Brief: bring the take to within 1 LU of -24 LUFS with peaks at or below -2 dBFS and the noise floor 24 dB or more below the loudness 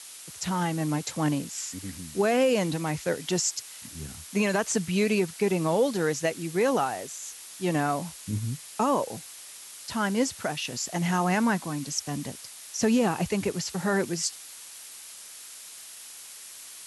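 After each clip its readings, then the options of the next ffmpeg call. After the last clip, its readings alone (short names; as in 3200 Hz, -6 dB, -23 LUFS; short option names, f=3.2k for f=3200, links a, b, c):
noise floor -45 dBFS; noise floor target -52 dBFS; loudness -27.5 LUFS; peak -14.0 dBFS; loudness target -24.0 LUFS
-> -af "afftdn=nr=7:nf=-45"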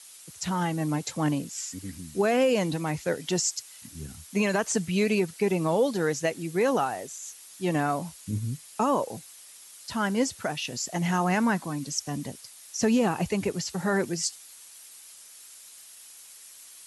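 noise floor -49 dBFS; noise floor target -52 dBFS
-> -af "afftdn=nr=6:nf=-49"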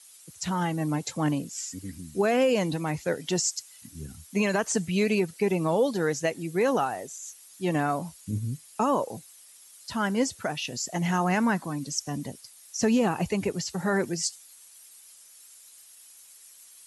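noise floor -52 dBFS; loudness -28.0 LUFS; peak -14.0 dBFS; loudness target -24.0 LUFS
-> -af "volume=4dB"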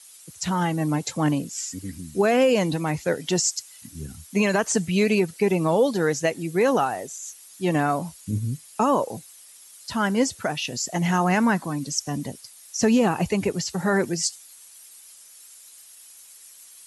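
loudness -24.0 LUFS; peak -10.0 dBFS; noise floor -48 dBFS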